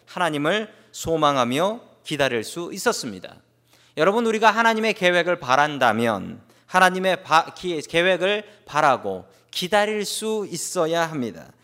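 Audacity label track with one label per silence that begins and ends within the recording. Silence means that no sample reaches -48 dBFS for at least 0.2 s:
3.400000	3.680000	silence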